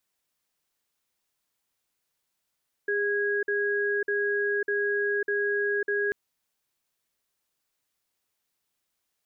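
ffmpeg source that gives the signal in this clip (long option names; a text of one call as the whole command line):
ffmpeg -f lavfi -i "aevalsrc='0.0473*(sin(2*PI*408*t)+sin(2*PI*1650*t))*clip(min(mod(t,0.6),0.55-mod(t,0.6))/0.005,0,1)':duration=3.24:sample_rate=44100" out.wav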